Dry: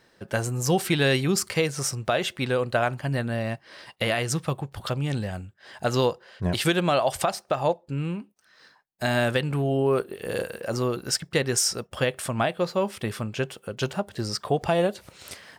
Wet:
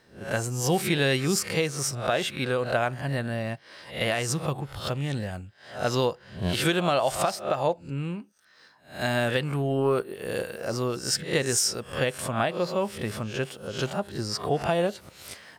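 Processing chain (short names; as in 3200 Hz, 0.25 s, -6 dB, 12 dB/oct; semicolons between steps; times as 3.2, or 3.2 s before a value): spectral swells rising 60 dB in 0.37 s; 9.53–10 transient shaper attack +7 dB, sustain +2 dB; gain -2.5 dB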